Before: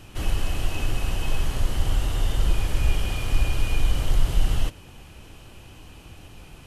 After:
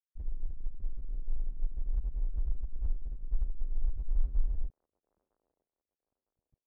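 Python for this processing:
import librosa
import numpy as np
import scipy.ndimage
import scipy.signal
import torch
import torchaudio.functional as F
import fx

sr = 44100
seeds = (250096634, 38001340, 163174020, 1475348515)

y = fx.spec_topn(x, sr, count=1)
y = fx.tilt_shelf(y, sr, db=-8.5, hz=970.0)
y = np.sign(y) * np.maximum(np.abs(y) - 10.0 ** (-54.5 / 20.0), 0.0)
y = fx.echo_wet_bandpass(y, sr, ms=958, feedback_pct=33, hz=880.0, wet_db=-17)
y = y * 10.0 ** (6.0 / 20.0)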